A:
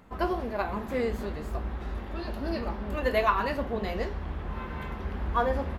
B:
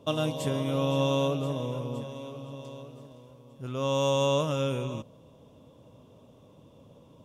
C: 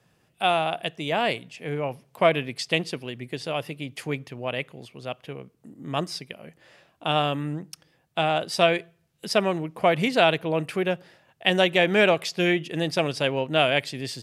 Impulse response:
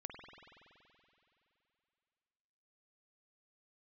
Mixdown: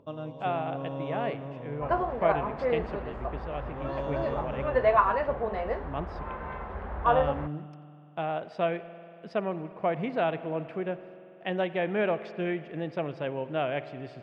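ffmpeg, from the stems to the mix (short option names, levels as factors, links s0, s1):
-filter_complex "[0:a]lowshelf=f=410:t=q:w=1.5:g=-7.5,adelay=1700,volume=1.33[s0];[1:a]volume=0.355[s1];[2:a]acrusher=bits=7:mix=0:aa=0.5,volume=0.335,asplit=2[s2][s3];[s3]volume=0.596[s4];[3:a]atrim=start_sample=2205[s5];[s4][s5]afir=irnorm=-1:irlink=0[s6];[s0][s1][s2][s6]amix=inputs=4:normalize=0,lowpass=1600,acompressor=mode=upward:threshold=0.00158:ratio=2.5"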